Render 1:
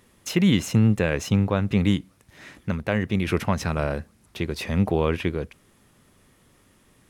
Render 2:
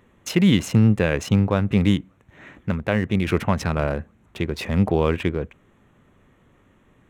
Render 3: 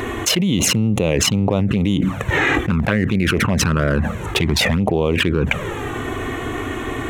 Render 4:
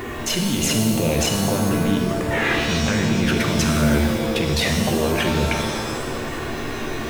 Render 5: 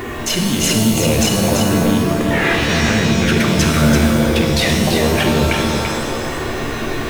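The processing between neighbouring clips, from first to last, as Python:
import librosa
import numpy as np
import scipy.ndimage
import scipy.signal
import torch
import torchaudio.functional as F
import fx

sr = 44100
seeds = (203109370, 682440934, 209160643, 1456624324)

y1 = fx.wiener(x, sr, points=9)
y1 = y1 * librosa.db_to_amplitude(2.5)
y2 = fx.env_flanger(y1, sr, rest_ms=2.8, full_db=-14.5)
y2 = fx.low_shelf(y2, sr, hz=67.0, db=-10.5)
y2 = fx.env_flatten(y2, sr, amount_pct=100)
y2 = y2 * librosa.db_to_amplitude(-2.5)
y3 = fx.delta_hold(y2, sr, step_db=-35.0)
y3 = fx.transient(y3, sr, attack_db=-2, sustain_db=3)
y3 = fx.rev_shimmer(y3, sr, seeds[0], rt60_s=1.3, semitones=7, shimmer_db=-2, drr_db=2.5)
y3 = y3 * librosa.db_to_amplitude(-6.0)
y4 = y3 + 10.0 ** (-5.0 / 20.0) * np.pad(y3, (int(337 * sr / 1000.0), 0))[:len(y3)]
y4 = y4 * librosa.db_to_amplitude(4.0)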